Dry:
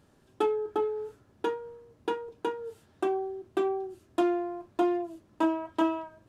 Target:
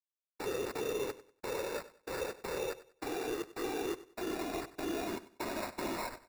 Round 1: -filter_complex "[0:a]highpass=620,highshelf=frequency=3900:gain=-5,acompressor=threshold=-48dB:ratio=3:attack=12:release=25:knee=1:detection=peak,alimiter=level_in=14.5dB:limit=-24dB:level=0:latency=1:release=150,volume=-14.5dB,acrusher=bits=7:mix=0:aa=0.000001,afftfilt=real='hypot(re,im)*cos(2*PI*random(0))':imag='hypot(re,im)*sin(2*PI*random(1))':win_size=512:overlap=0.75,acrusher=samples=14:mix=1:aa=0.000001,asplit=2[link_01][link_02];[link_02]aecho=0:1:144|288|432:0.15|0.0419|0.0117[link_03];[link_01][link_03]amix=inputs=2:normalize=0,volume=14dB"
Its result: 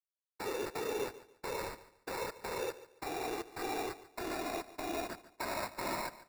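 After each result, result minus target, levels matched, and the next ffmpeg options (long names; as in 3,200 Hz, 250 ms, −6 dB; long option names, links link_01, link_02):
echo 48 ms late; 250 Hz band −3.0 dB
-filter_complex "[0:a]highpass=620,highshelf=frequency=3900:gain=-5,acompressor=threshold=-48dB:ratio=3:attack=12:release=25:knee=1:detection=peak,alimiter=level_in=14.5dB:limit=-24dB:level=0:latency=1:release=150,volume=-14.5dB,acrusher=bits=7:mix=0:aa=0.000001,afftfilt=real='hypot(re,im)*cos(2*PI*random(0))':imag='hypot(re,im)*sin(2*PI*random(1))':win_size=512:overlap=0.75,acrusher=samples=14:mix=1:aa=0.000001,asplit=2[link_01][link_02];[link_02]aecho=0:1:96|192|288:0.15|0.0419|0.0117[link_03];[link_01][link_03]amix=inputs=2:normalize=0,volume=14dB"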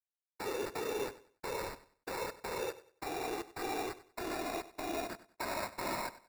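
250 Hz band −3.0 dB
-filter_complex "[0:a]highpass=230,highshelf=frequency=3900:gain=-5,acompressor=threshold=-48dB:ratio=3:attack=12:release=25:knee=1:detection=peak,alimiter=level_in=14.5dB:limit=-24dB:level=0:latency=1:release=150,volume=-14.5dB,acrusher=bits=7:mix=0:aa=0.000001,afftfilt=real='hypot(re,im)*cos(2*PI*random(0))':imag='hypot(re,im)*sin(2*PI*random(1))':win_size=512:overlap=0.75,acrusher=samples=14:mix=1:aa=0.000001,asplit=2[link_01][link_02];[link_02]aecho=0:1:96|192|288:0.15|0.0419|0.0117[link_03];[link_01][link_03]amix=inputs=2:normalize=0,volume=14dB"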